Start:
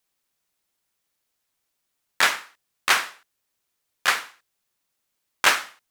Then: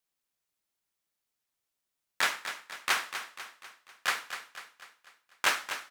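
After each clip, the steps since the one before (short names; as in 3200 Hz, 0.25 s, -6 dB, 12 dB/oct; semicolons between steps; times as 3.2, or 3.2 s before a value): feedback echo 0.247 s, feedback 50%, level -10 dB; gain -8.5 dB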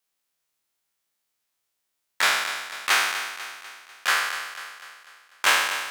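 spectral trails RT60 1.10 s; low shelf 340 Hz -6 dB; gain +4 dB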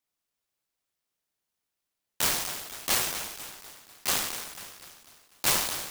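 noise-modulated delay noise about 4000 Hz, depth 0.2 ms; gain -5 dB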